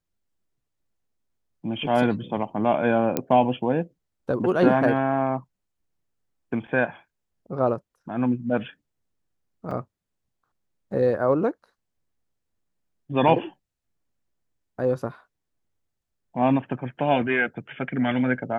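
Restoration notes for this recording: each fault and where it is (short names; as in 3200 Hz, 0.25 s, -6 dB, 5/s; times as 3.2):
3.17 pop -9 dBFS
9.71 gap 4.1 ms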